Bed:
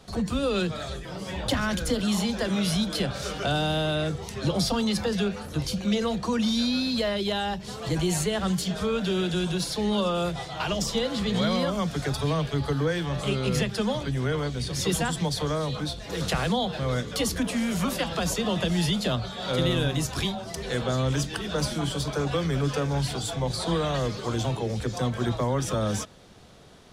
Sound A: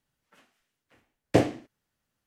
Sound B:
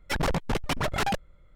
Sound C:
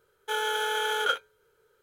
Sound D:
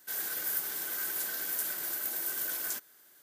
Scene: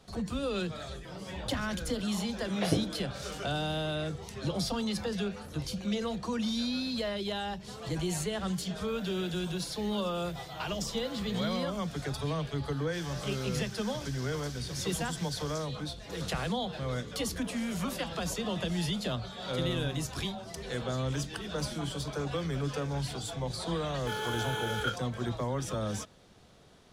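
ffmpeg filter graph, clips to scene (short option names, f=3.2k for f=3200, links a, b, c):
-filter_complex "[4:a]asplit=2[a][b];[0:a]volume=-7dB[c];[1:a]acrossover=split=530|4500[d][e][f];[d]adelay=100[g];[f]adelay=710[h];[g][e][h]amix=inputs=3:normalize=0[i];[a]acompressor=threshold=-50dB:ratio=6:attack=3.2:release=140:knee=1:detection=peak[j];[b]lowpass=f=5.5k:t=q:w=3.3[k];[i]atrim=end=2.26,asetpts=PTS-STARTPTS,volume=-6.5dB,afade=t=in:d=0.004:c=hsin,afade=t=out:st=2.256:d=0.004:c=hsin,adelay=1270[l];[j]atrim=end=3.22,asetpts=PTS-STARTPTS,volume=-14dB,afade=t=in:d=0.004:c=hsin,afade=t=out:st=3.216:d=0.004:c=hsin,adelay=8810[m];[k]atrim=end=3.22,asetpts=PTS-STARTPTS,volume=-10dB,afade=t=in:d=0.004:c=hsin,afade=t=out:st=3.216:d=0.004:c=hsin,adelay=12850[n];[3:a]atrim=end=1.82,asetpts=PTS-STARTPTS,volume=-7dB,afade=t=in:d=0.004:c=hsin,afade=t=out:st=1.816:d=0.004:c=hsin,adelay=23780[o];[c][l][m][n][o]amix=inputs=5:normalize=0"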